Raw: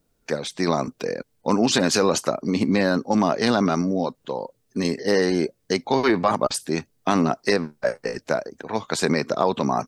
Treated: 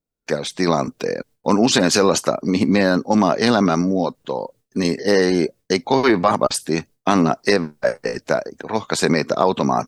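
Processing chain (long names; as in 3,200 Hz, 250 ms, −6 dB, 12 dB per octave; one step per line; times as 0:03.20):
noise gate with hold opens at −54 dBFS
level +4 dB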